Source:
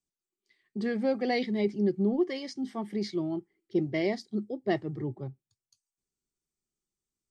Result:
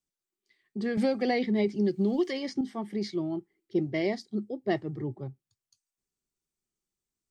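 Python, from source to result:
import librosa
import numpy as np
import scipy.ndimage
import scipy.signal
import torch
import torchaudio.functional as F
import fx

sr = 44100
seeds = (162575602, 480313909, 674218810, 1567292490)

y = fx.band_squash(x, sr, depth_pct=100, at=(0.97, 2.61))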